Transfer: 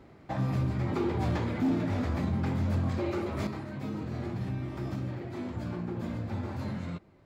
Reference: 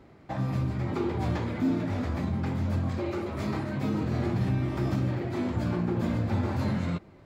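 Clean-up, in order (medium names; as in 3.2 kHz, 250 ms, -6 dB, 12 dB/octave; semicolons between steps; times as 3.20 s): clip repair -22.5 dBFS; trim 0 dB, from 3.47 s +7 dB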